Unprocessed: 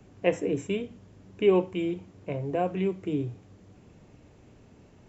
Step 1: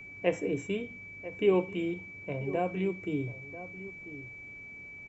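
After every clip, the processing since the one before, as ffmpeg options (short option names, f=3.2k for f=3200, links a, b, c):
-filter_complex "[0:a]aeval=exprs='val(0)+0.00891*sin(2*PI*2300*n/s)':c=same,asplit=2[a][b];[b]adelay=991.3,volume=-14dB,highshelf=f=4k:g=-22.3[c];[a][c]amix=inputs=2:normalize=0,volume=-3.5dB"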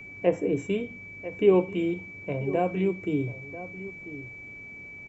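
-filter_complex "[0:a]acrossover=split=1400[a][b];[a]equalizer=f=300:w=0.37:g=2.5[c];[b]alimiter=level_in=9dB:limit=-24dB:level=0:latency=1:release=464,volume=-9dB[d];[c][d]amix=inputs=2:normalize=0,volume=3dB"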